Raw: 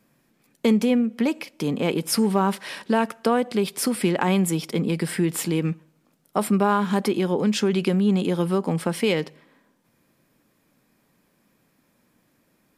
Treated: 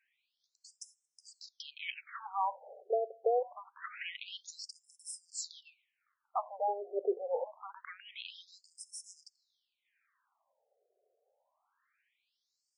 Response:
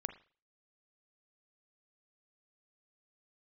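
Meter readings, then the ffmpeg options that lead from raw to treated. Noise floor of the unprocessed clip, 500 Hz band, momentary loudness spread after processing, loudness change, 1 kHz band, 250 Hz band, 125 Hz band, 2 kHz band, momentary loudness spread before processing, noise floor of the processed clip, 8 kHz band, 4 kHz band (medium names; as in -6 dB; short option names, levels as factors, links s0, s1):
-67 dBFS, -13.0 dB, 18 LU, -15.5 dB, -10.5 dB, under -35 dB, under -40 dB, -16.0 dB, 6 LU, -85 dBFS, -14.5 dB, -14.5 dB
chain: -af "highshelf=f=11000:g=-11.5,asoftclip=type=tanh:threshold=0.2,afftfilt=real='re*between(b*sr/1024,520*pow(7400/520,0.5+0.5*sin(2*PI*0.25*pts/sr))/1.41,520*pow(7400/520,0.5+0.5*sin(2*PI*0.25*pts/sr))*1.41)':imag='im*between(b*sr/1024,520*pow(7400/520,0.5+0.5*sin(2*PI*0.25*pts/sr))/1.41,520*pow(7400/520,0.5+0.5*sin(2*PI*0.25*pts/sr))*1.41)':win_size=1024:overlap=0.75,volume=0.668"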